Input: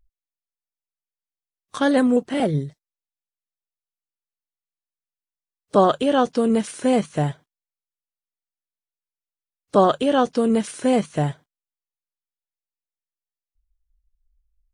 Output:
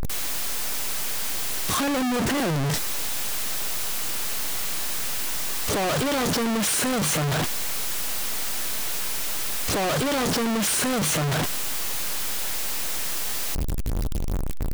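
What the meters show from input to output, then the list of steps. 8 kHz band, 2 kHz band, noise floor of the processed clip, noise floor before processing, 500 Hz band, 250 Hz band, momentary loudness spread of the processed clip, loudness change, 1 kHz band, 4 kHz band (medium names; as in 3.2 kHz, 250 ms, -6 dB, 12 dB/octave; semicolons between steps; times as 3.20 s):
+17.0 dB, +6.0 dB, -26 dBFS, under -85 dBFS, -7.0 dB, -5.0 dB, 4 LU, -4.5 dB, -4.0 dB, +9.5 dB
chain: one-bit comparator; trim +1.5 dB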